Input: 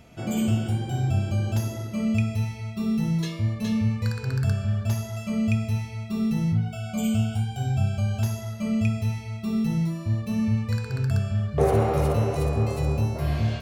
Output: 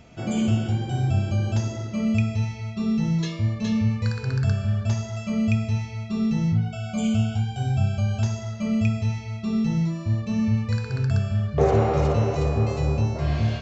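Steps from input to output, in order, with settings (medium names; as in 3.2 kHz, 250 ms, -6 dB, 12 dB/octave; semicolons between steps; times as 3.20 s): resampled via 16 kHz; trim +1.5 dB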